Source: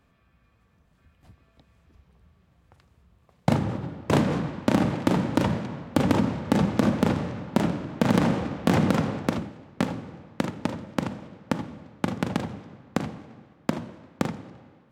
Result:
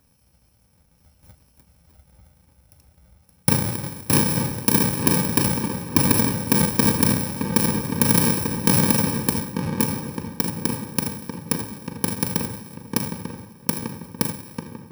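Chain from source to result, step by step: bit-reversed sample order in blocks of 64 samples; band-stop 420 Hz, Q 12; filtered feedback delay 893 ms, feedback 47%, low-pass 1.7 kHz, level -6 dB; trim +3 dB

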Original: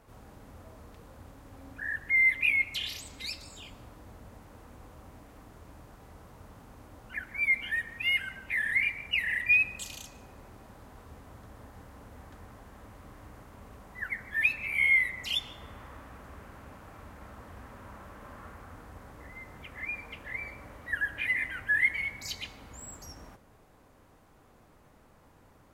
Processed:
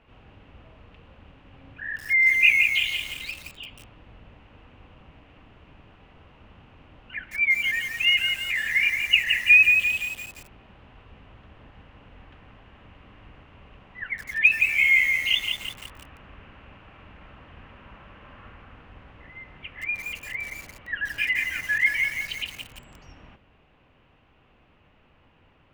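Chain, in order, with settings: octave divider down 1 oct, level 0 dB; resonant low-pass 2.8 kHz, resonance Q 5.4; bit-crushed delay 171 ms, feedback 55%, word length 6-bit, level -4.5 dB; trim -2.5 dB

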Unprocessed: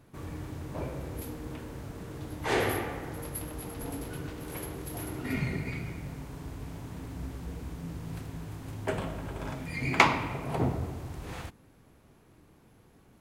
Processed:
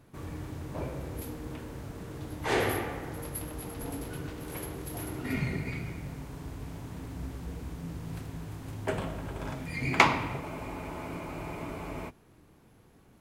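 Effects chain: spectral freeze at 10.42 s, 1.67 s

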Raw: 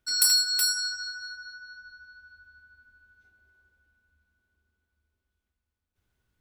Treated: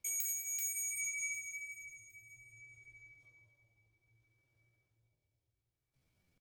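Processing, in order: compression 3:1, threshold -34 dBFS, peak gain reduction 12.5 dB; rotary cabinet horn 0.6 Hz; pitch shift +7.5 st; feedback delay 758 ms, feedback 30%, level -20 dB; gated-style reverb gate 280 ms flat, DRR 11 dB

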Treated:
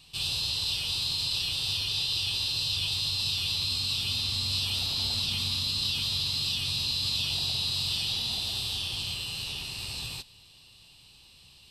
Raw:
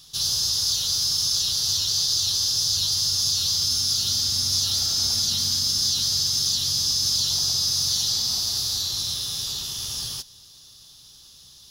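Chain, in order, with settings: treble shelf 2.2 kHz -8 dB; formant shift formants -4 st

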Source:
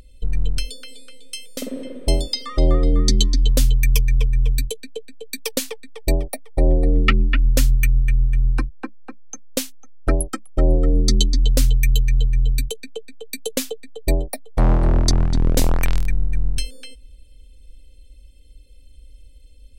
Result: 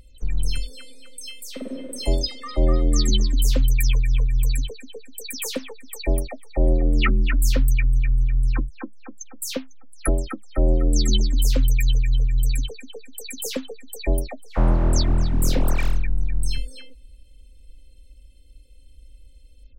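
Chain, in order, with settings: delay that grows with frequency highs early, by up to 153 ms; trim -2.5 dB

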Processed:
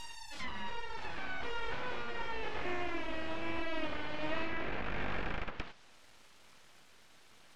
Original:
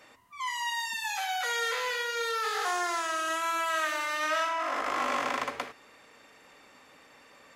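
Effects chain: reverse echo 738 ms -8.5 dB; full-wave rectifier; low-pass that closes with the level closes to 2 kHz, closed at -29 dBFS; trim -2.5 dB

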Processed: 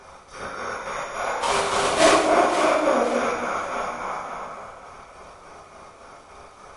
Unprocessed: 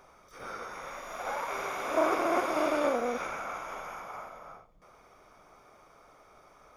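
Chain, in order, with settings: 1.41–2.12 s: square wave that keeps the level; de-hum 110 Hz, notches 8; in parallel at -1.5 dB: compression, threshold -42 dBFS, peak gain reduction 21 dB; on the sum: square tremolo 3.5 Hz, depth 60%, duty 60%; crackle 360 per s -51 dBFS; on a send: echo whose repeats swap between lows and highs 262 ms, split 1.1 kHz, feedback 60%, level -6.5 dB; on the sum: gated-style reverb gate 240 ms falling, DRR -3 dB; trim +4 dB; MP3 48 kbps 32 kHz

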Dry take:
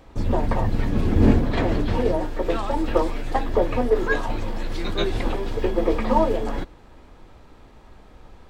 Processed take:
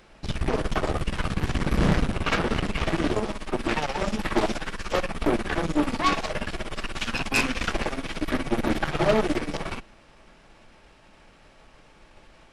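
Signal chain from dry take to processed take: tilt shelf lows -7.5 dB, about 1.4 kHz; Chebyshev shaper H 8 -14 dB, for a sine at -9.5 dBFS; wide varispeed 0.678×

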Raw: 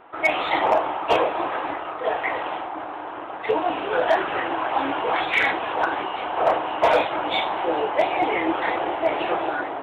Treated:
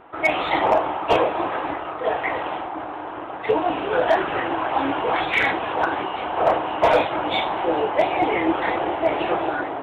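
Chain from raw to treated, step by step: bass shelf 280 Hz +8 dB

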